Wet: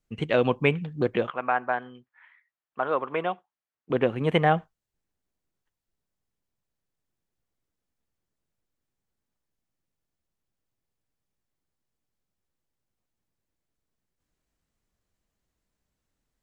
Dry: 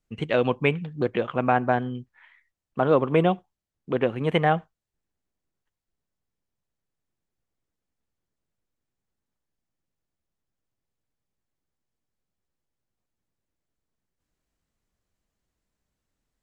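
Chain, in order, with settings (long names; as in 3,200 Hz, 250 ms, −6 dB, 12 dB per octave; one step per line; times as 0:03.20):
0:01.30–0:03.90: resonant band-pass 1,400 Hz, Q 0.91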